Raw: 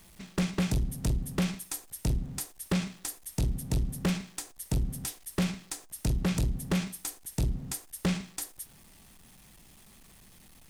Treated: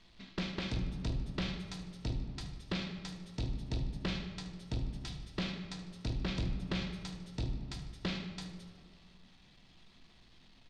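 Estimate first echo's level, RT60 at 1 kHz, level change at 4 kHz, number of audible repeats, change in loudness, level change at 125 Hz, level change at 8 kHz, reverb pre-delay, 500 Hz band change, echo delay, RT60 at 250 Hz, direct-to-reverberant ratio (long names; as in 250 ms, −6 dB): −13.5 dB, 2.1 s, −1.5 dB, 1, −7.0 dB, −7.0 dB, −18.5 dB, 3 ms, −6.5 dB, 75 ms, 2.3 s, 3.5 dB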